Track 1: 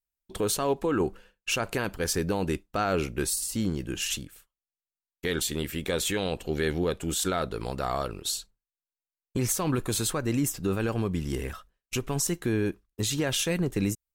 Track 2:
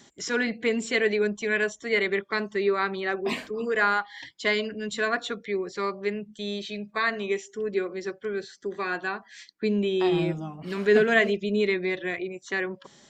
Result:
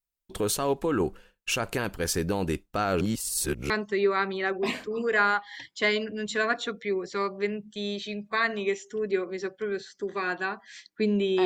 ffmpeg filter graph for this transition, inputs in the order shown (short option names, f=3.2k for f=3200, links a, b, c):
-filter_complex "[0:a]apad=whole_dur=11.45,atrim=end=11.45,asplit=2[a][b];[a]atrim=end=3.012[c];[b]atrim=start=3.008:end=3.702,asetpts=PTS-STARTPTS,areverse[d];[1:a]atrim=start=2.328:end=10.08[e];[c][d]acrossfade=d=0.004:c1=hsin:c2=hsin[f];[f][e]acrossfade=d=0.004:c1=hsin:c2=hsin"